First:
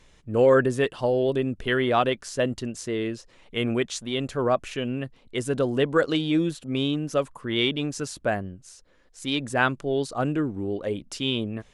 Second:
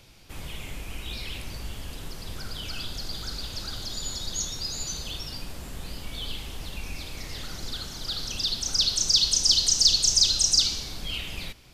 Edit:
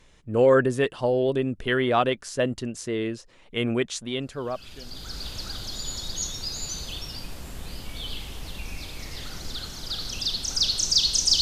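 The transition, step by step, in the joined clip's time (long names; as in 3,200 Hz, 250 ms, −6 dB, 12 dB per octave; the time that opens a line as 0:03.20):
first
0:04.64: continue with second from 0:02.82, crossfade 1.22 s quadratic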